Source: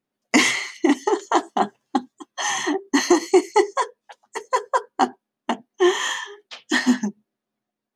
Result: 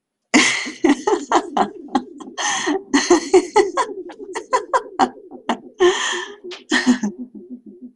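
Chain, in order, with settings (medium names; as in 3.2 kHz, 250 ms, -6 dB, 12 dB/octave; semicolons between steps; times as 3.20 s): Chebyshev shaper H 4 -38 dB, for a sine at -3.5 dBFS; bucket-brigade echo 315 ms, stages 1024, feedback 72%, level -17 dB; trim +3 dB; MP2 64 kbps 44.1 kHz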